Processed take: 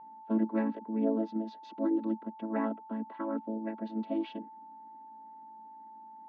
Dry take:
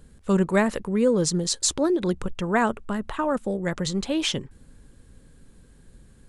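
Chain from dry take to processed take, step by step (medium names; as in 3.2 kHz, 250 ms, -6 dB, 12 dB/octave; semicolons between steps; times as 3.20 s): vocoder on a held chord major triad, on A3; whistle 880 Hz -39 dBFS; Bessel low-pass 2.5 kHz, order 8; trim -8 dB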